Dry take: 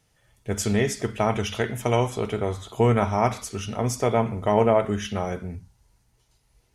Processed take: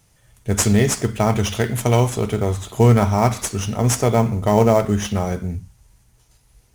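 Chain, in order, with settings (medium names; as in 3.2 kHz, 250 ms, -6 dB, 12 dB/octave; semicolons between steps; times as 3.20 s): tone controls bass +6 dB, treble +11 dB; in parallel at -6.5 dB: sample-rate reducer 6.6 kHz, jitter 20%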